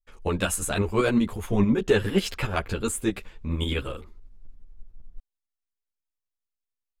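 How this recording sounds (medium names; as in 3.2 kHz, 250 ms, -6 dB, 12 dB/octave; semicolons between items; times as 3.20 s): tremolo saw up 11 Hz, depth 55%; a shimmering, thickened sound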